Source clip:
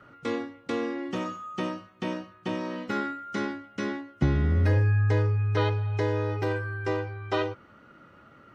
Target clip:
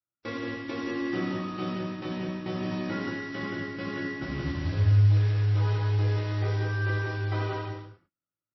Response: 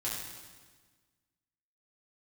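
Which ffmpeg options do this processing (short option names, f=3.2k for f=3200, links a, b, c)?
-filter_complex "[0:a]agate=range=-50dB:threshold=-44dB:ratio=16:detection=peak,asetnsamples=n=441:p=0,asendcmd='4.99 highshelf g -11',highshelf=f=4.7k:g=-5.5,alimiter=limit=-19dB:level=0:latency=1:release=28,acompressor=threshold=-31dB:ratio=8,acrusher=bits=3:mode=log:mix=0:aa=0.000001,aecho=1:1:177:0.631[a];[1:a]atrim=start_sample=2205,afade=t=out:st=0.32:d=0.01,atrim=end_sample=14553[b];[a][b]afir=irnorm=-1:irlink=0" -ar 16000 -c:a libmp3lame -b:a 24k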